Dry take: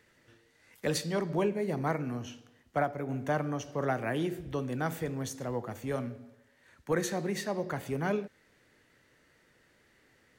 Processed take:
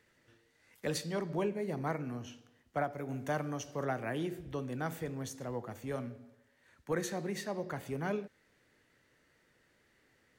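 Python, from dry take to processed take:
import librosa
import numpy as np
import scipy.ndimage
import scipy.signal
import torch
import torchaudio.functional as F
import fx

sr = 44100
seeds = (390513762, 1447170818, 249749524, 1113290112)

y = fx.high_shelf(x, sr, hz=3800.0, db=7.5, at=(2.91, 3.84))
y = y * 10.0 ** (-4.5 / 20.0)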